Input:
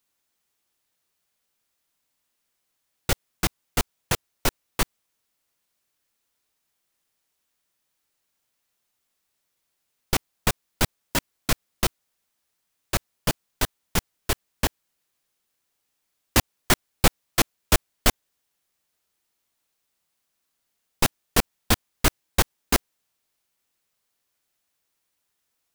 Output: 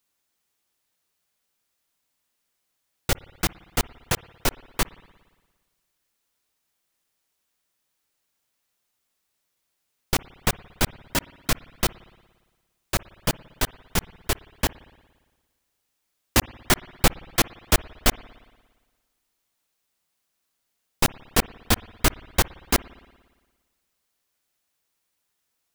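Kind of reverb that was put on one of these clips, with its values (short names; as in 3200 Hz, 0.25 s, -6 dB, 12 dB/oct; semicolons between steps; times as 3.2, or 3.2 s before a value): spring tank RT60 1.4 s, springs 57 ms, chirp 75 ms, DRR 20 dB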